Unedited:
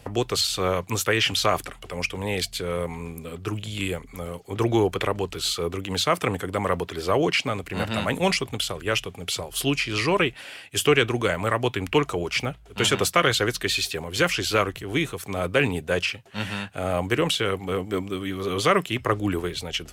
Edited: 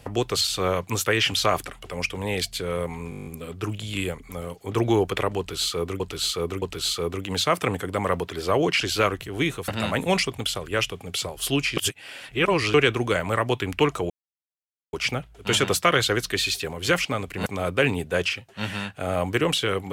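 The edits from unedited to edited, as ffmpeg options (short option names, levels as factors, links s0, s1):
-filter_complex "[0:a]asplit=18[s0][s1][s2][s3][s4][s5][s6][s7][s8][s9][s10][s11][s12][s13][s14][s15][s16][s17];[s0]atrim=end=3.122[s18];[s1]atrim=start=3.098:end=3.122[s19];[s2]atrim=start=3.098:end=3.122[s20];[s3]atrim=start=3.098:end=3.122[s21];[s4]atrim=start=3.098:end=3.122[s22];[s5]atrim=start=3.098:end=3.122[s23];[s6]atrim=start=3.098:end=3.122[s24];[s7]atrim=start=3.098:end=3.122[s25];[s8]atrim=start=3.098:end=5.842[s26];[s9]atrim=start=5.218:end=5.842[s27];[s10]atrim=start=5.218:end=7.412[s28];[s11]atrim=start=14.358:end=15.232[s29];[s12]atrim=start=7.818:end=9.912[s30];[s13]atrim=start=9.908:end=10.882,asetpts=PTS-STARTPTS,areverse[s31];[s14]atrim=start=10.878:end=12.24,asetpts=PTS-STARTPTS,afade=t=out:st=1.358:d=0.004:c=hsin,apad=pad_dur=0.83[s32];[s15]atrim=start=12.24:end=14.362,asetpts=PTS-STARTPTS,afade=t=in:d=0.004:c=hsin[s33];[s16]atrim=start=7.408:end=7.822[s34];[s17]atrim=start=15.228[s35];[s18][s19]acrossfade=d=0.004:c1=hsin:c2=hsin[s36];[s36][s20]acrossfade=d=0.004:c1=hsin:c2=hsin[s37];[s37][s21]acrossfade=d=0.004:c1=hsin:c2=hsin[s38];[s38][s22]acrossfade=d=0.004:c1=hsin:c2=hsin[s39];[s39][s23]acrossfade=d=0.004:c1=hsin:c2=hsin[s40];[s40][s24]acrossfade=d=0.004:c1=hsin:c2=hsin[s41];[s41][s25]acrossfade=d=0.004:c1=hsin:c2=hsin[s42];[s42][s26]acrossfade=d=0.004:c1=hsin:c2=hsin[s43];[s43][s27]acrossfade=d=0.004:c1=hsin:c2=hsin[s44];[s44][s28]acrossfade=d=0.004:c1=hsin:c2=hsin[s45];[s45][s29]acrossfade=d=0.004:c1=hsin:c2=hsin[s46];[s46][s30]acrossfade=d=0.004:c1=hsin:c2=hsin[s47];[s47][s31]acrossfade=d=0.004:c1=hsin:c2=hsin[s48];[s32][s33]concat=n=2:v=0:a=1[s49];[s48][s49]acrossfade=d=0.004:c1=hsin:c2=hsin[s50];[s50][s34]acrossfade=d=0.004:c1=hsin:c2=hsin[s51];[s51][s35]acrossfade=d=0.004:c1=hsin:c2=hsin"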